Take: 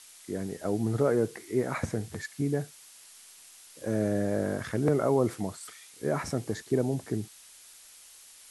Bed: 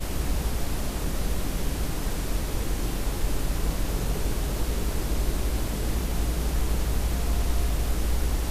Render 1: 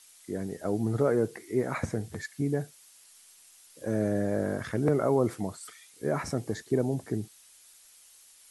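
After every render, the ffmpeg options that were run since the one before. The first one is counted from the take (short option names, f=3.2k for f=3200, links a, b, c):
-af "afftdn=nr=6:nf=-53"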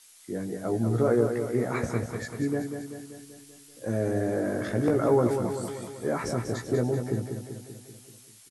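-filter_complex "[0:a]asplit=2[a][b];[b]adelay=17,volume=-4.5dB[c];[a][c]amix=inputs=2:normalize=0,aecho=1:1:193|386|579|772|965|1158|1351:0.447|0.259|0.15|0.0872|0.0505|0.0293|0.017"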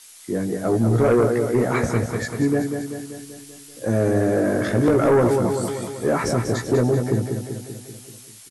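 -af "aeval=exprs='0.266*sin(PI/2*1.78*val(0)/0.266)':c=same"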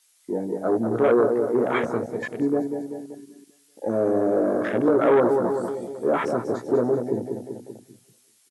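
-af "afwtdn=0.0398,highpass=280"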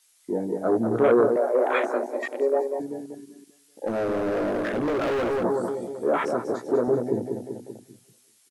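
-filter_complex "[0:a]asettb=1/sr,asplit=3[a][b][c];[a]atrim=end=1.364[d];[b]atrim=start=1.36:end=2.8,asetpts=PTS-STARTPTS,afade=t=in:d=0.004:c=qsin,afade=t=out:st=1.436:d=0.004:c=qsin,afreqshift=130[e];[c]atrim=start=2.796[f];[d][e]acrossfade=d=0.004:c1=hsin:c2=qsin[g];[g][f]acrossfade=d=0.004:c1=qsin:c2=hsin,asplit=3[h][i][j];[h]afade=t=out:st=3.86:d=0.02[k];[i]asoftclip=type=hard:threshold=-23dB,afade=t=in:st=3.86:d=0.02,afade=t=out:st=5.43:d=0.02[l];[j]afade=t=in:st=5.43:d=0.02[m];[k][l][m]amix=inputs=3:normalize=0,asettb=1/sr,asplit=3[n][o][p];[n]atrim=end=6.044[q];[o]atrim=start=6.04:end=6.88,asetpts=PTS-STARTPTS,afade=t=in:d=0.004:c=qsin,afade=t=out:st=0.836:d=0.004:c=qsin,highpass=f=260:p=1[r];[p]atrim=start=6.876[s];[q][r]acrossfade=d=0.004:c1=hsin:c2=qsin[t];[t][s]acrossfade=d=0.004:c1=qsin:c2=hsin"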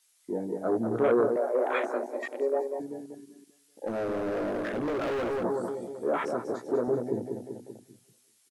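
-af "volume=-5dB"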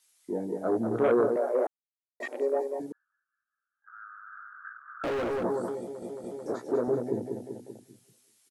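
-filter_complex "[0:a]asettb=1/sr,asplit=3[a][b][c];[a]atrim=end=2.924[d];[b]atrim=start=2.92:end=5.04,asetpts=PTS-STARTPTS,afade=t=in:d=0.004:c=qsin,afade=t=out:st=2.116:d=0.004:c=qsin,asuperpass=centerf=1400:order=8:qfactor=3.3[e];[c]atrim=start=5.036[f];[d][e]acrossfade=d=0.004:c1=hsin:c2=qsin[g];[g][f]acrossfade=d=0.004:c1=qsin:c2=hsin,asplit=6[h][i][j][k][l][m];[h]atrim=end=1.67,asetpts=PTS-STARTPTS,afade=t=out:st=1.666:d=0.004:c=hsin[n];[i]atrim=start=1.67:end=2.2,asetpts=PTS-STARTPTS,volume=0[o];[j]atrim=start=2.2:end=6.022,asetpts=PTS-STARTPTS,afade=t=in:d=0.004:c=hsin[p];[k]atrim=start=5.798:end=6.022[q];[l]atrim=start=5.798:end=6.022[r];[m]atrim=start=6.458[s];[n][o][p]concat=n=3:v=0:a=1[t];[t][q]acrossfade=d=0.004:c1=hsin:c2=hsin[u];[u][r]acrossfade=d=0.004:c1=hsin:c2=hsin[v];[v][s]acrossfade=d=0.004:c1=hsin:c2=hsin"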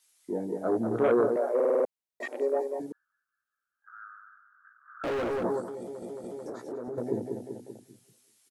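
-filter_complex "[0:a]asettb=1/sr,asplit=3[a][b][c];[a]atrim=end=5.604[d];[b]atrim=start=5.6:end=6.98,asetpts=PTS-STARTPTS,afade=t=in:d=0.004:c=qsin,afade=t=out:st=1.376:d=0.004:c=qsin,acompressor=threshold=-34dB:ratio=6:attack=3.2:release=140:knee=1:detection=peak[e];[c]atrim=start=6.976[f];[d][e]acrossfade=d=0.004:c1=hsin:c2=qsin[g];[g][f]acrossfade=d=0.004:c1=qsin:c2=hsin,asplit=9[h][i][j][k][l][m][n][o][p];[h]atrim=end=1.602[q];[i]atrim=start=1.548:end=1.602[r];[j]atrim=start=1.548:end=1.602[s];[k]atrim=start=1.548:end=1.602[t];[l]atrim=start=1.548:end=1.602[u];[m]atrim=start=1.548:end=1.602[v];[n]atrim=start=1.848:end=4.39,asetpts=PTS-STARTPTS,afade=t=out:st=2.212:d=0.33:silence=0.199526[w];[o]atrim=start=4.39:end=4.77,asetpts=PTS-STARTPTS,volume=-14dB[x];[p]atrim=start=4.77,asetpts=PTS-STARTPTS,afade=t=in:d=0.33:silence=0.199526[y];[q][r]acrossfade=d=0.004:c1=hsin:c2=hsin[z];[z][s]acrossfade=d=0.004:c1=hsin:c2=hsin[aa];[aa][t]acrossfade=d=0.004:c1=hsin:c2=hsin[ab];[ab][u]acrossfade=d=0.004:c1=hsin:c2=hsin[ac];[ac][v]acrossfade=d=0.004:c1=hsin:c2=hsin[ad];[w][x][y]concat=n=3:v=0:a=1[ae];[ad][ae]acrossfade=d=0.004:c1=hsin:c2=hsin"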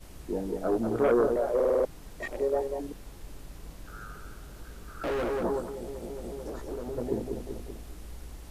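-filter_complex "[1:a]volume=-18dB[a];[0:a][a]amix=inputs=2:normalize=0"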